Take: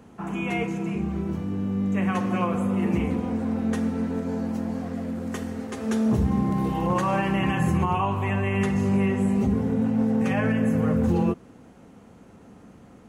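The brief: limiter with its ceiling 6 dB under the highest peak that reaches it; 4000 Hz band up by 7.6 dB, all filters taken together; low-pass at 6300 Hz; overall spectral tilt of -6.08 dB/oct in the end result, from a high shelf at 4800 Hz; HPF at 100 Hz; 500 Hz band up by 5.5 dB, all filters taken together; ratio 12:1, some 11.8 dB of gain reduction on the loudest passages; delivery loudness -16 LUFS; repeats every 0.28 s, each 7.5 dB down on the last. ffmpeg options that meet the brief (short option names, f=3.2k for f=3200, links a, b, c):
-af "highpass=100,lowpass=6.3k,equalizer=f=500:t=o:g=6.5,equalizer=f=4k:t=o:g=9,highshelf=f=4.8k:g=7,acompressor=threshold=-29dB:ratio=12,alimiter=level_in=2.5dB:limit=-24dB:level=0:latency=1,volume=-2.5dB,aecho=1:1:280|560|840|1120|1400:0.422|0.177|0.0744|0.0312|0.0131,volume=18dB"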